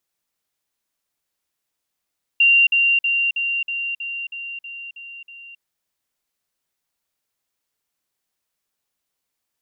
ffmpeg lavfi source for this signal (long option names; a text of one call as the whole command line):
ffmpeg -f lavfi -i "aevalsrc='pow(10,(-10.5-3*floor(t/0.32))/20)*sin(2*PI*2770*t)*clip(min(mod(t,0.32),0.27-mod(t,0.32))/0.005,0,1)':duration=3.2:sample_rate=44100" out.wav